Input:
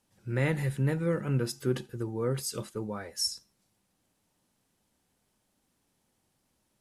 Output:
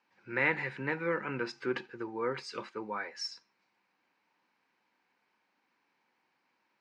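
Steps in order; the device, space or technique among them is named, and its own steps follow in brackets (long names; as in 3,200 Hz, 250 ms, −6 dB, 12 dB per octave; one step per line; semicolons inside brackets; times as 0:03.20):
phone earpiece (loudspeaker in its box 390–4,300 Hz, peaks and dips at 430 Hz −3 dB, 620 Hz −7 dB, 970 Hz +6 dB, 1,600 Hz +5 dB, 2,300 Hz +8 dB, 3,400 Hz −8 dB)
level +2 dB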